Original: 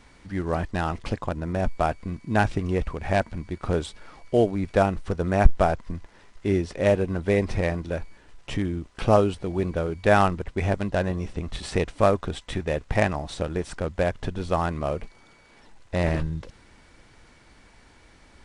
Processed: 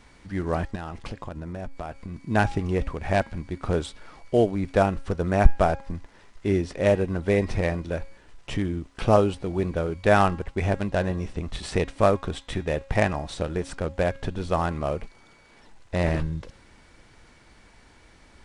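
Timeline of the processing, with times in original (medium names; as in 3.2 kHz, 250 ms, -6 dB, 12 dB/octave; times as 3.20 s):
0.75–2.16 s: compression, threshold -30 dBFS
whole clip: de-hum 272.6 Hz, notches 19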